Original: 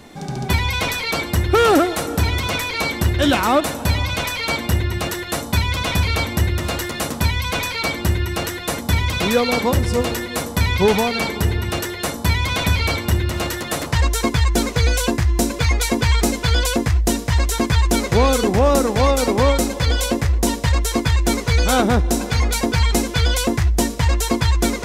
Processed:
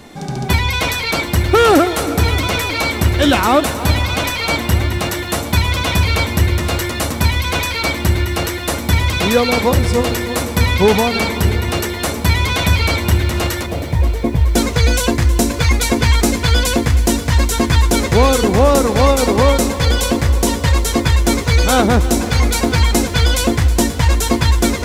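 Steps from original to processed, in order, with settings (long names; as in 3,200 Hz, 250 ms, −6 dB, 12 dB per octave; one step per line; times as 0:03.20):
0:13.66–0:14.55: moving average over 32 samples
feedback echo at a low word length 318 ms, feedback 80%, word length 7 bits, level −15 dB
level +3.5 dB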